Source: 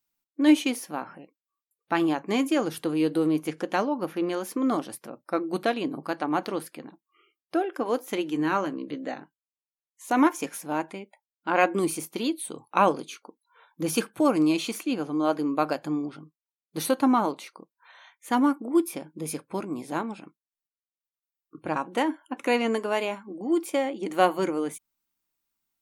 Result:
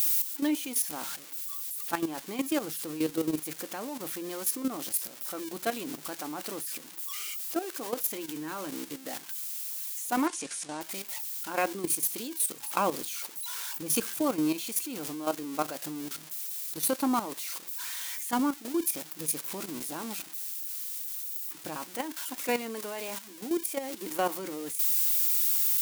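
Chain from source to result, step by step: zero-crossing glitches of -19 dBFS; 10.27–10.81 s: elliptic low-pass 9.3 kHz, stop band 50 dB; level held to a coarse grid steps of 11 dB; trim -3.5 dB

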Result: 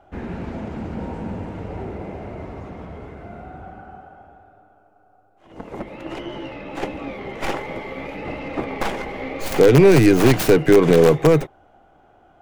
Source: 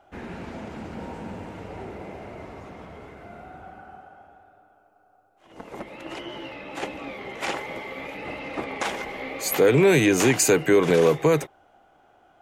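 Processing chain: tracing distortion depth 0.42 ms; tilt EQ -2 dB/octave; in parallel at -8 dB: integer overflow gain 6 dB

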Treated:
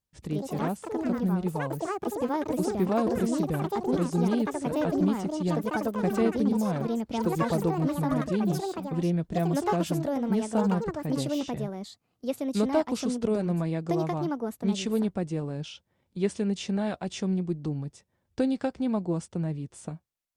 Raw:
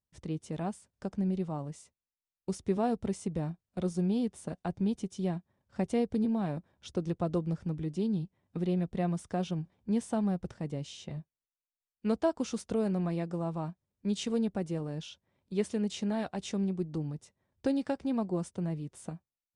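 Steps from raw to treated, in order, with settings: ever faster or slower copies 121 ms, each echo +5 st, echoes 3; speed mistake 25 fps video run at 24 fps; trim +3.5 dB

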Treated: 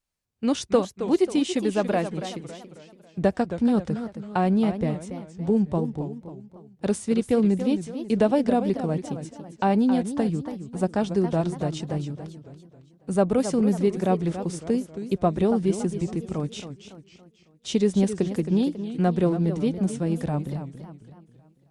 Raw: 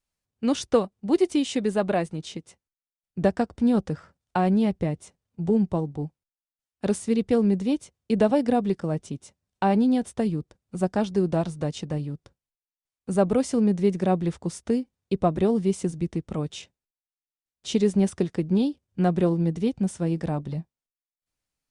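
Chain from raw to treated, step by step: modulated delay 276 ms, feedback 45%, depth 218 cents, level -10.5 dB

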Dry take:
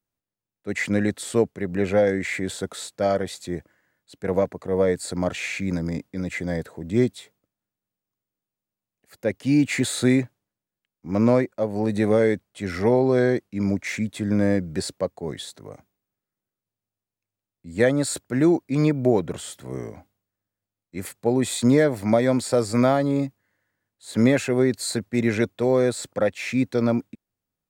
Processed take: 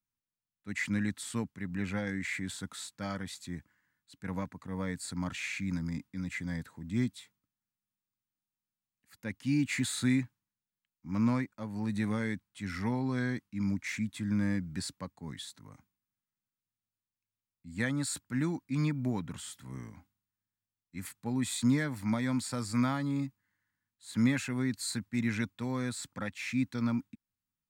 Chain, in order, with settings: high-order bell 500 Hz -15 dB 1.3 oct; trim -7.5 dB

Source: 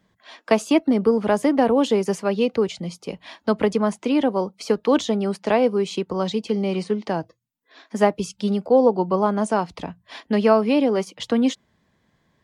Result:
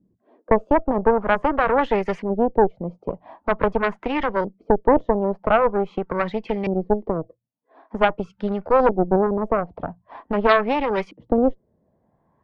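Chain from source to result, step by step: LFO low-pass saw up 0.45 Hz 290–2400 Hz; in parallel at +2 dB: peak limiter -8 dBFS, peak gain reduction 8.5 dB; on the sum: Chebyshev shaper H 4 -9 dB, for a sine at 4 dBFS; dynamic bell 250 Hz, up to -6 dB, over -21 dBFS, Q 1.4; trim -8 dB

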